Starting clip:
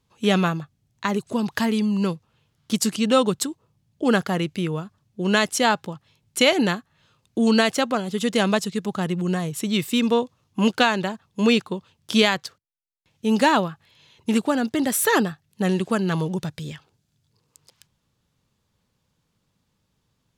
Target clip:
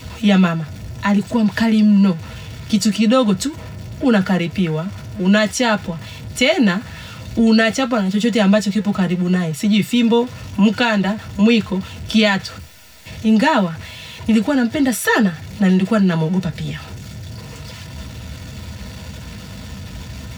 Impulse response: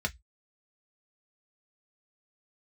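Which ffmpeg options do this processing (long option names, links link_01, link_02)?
-filter_complex "[0:a]aeval=exprs='val(0)+0.5*0.0211*sgn(val(0))':channel_layout=same[link_01];[1:a]atrim=start_sample=2205[link_02];[link_01][link_02]afir=irnorm=-1:irlink=0,asplit=2[link_03][link_04];[link_04]alimiter=limit=-6.5dB:level=0:latency=1,volume=1dB[link_05];[link_03][link_05]amix=inputs=2:normalize=0,volume=-7.5dB"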